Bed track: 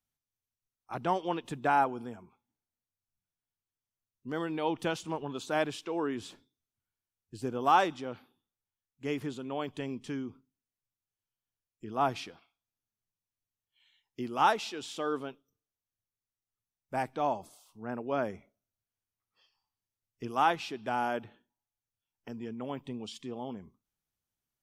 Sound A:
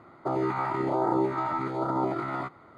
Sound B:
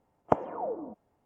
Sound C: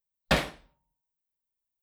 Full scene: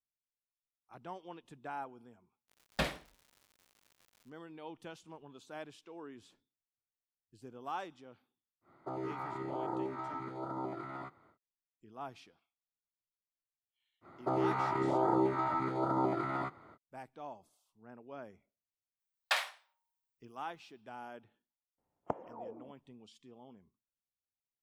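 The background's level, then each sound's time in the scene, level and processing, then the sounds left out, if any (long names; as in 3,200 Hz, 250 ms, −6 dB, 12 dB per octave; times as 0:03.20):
bed track −16 dB
0:02.48: mix in C −9 dB + surface crackle 190 per second −42 dBFS
0:08.61: mix in A −12 dB, fades 0.10 s
0:14.01: mix in A −4 dB, fades 0.05 s
0:19.00: mix in C −4 dB + inverse Chebyshev high-pass filter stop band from 230 Hz, stop band 60 dB
0:21.78: mix in B −12.5 dB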